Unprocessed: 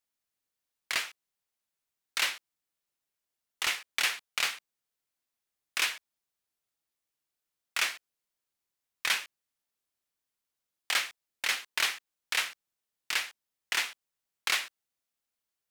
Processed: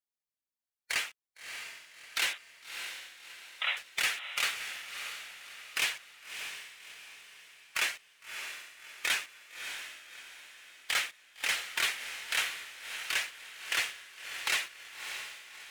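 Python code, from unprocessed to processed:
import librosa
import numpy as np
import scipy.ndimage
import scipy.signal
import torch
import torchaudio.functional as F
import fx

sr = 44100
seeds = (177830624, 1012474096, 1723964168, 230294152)

p1 = fx.spec_quant(x, sr, step_db=15)
p2 = fx.leveller(p1, sr, passes=2)
p3 = fx.brickwall_bandpass(p2, sr, low_hz=500.0, high_hz=4000.0, at=(2.33, 3.77))
p4 = p3 + fx.echo_diffused(p3, sr, ms=620, feedback_pct=43, wet_db=-8.0, dry=0)
y = p4 * librosa.db_to_amplitude(-6.5)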